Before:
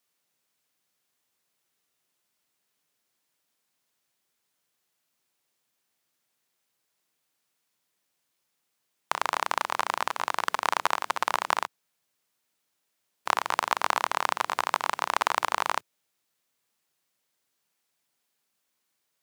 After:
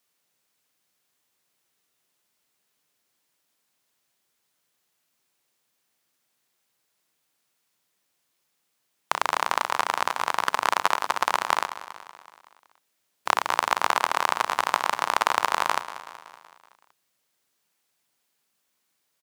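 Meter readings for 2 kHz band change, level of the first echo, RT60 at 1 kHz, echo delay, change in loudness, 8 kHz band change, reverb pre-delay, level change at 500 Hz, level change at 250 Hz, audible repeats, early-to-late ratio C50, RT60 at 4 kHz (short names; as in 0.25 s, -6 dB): +3.5 dB, -14.0 dB, none, 0.188 s, +3.5 dB, +3.5 dB, none, +3.0 dB, +3.0 dB, 5, none, none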